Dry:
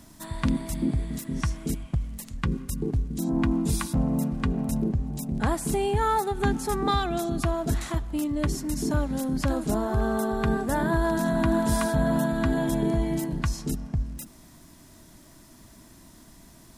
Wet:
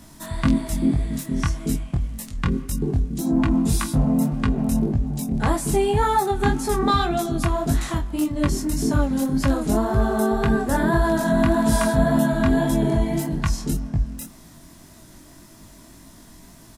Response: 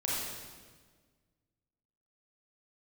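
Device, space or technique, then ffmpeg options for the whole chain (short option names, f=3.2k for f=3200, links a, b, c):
double-tracked vocal: -filter_complex "[0:a]asplit=2[a][b];[b]adelay=26,volume=-13dB[c];[a][c]amix=inputs=2:normalize=0,flanger=delay=18.5:depth=4.8:speed=1.8,volume=7.5dB"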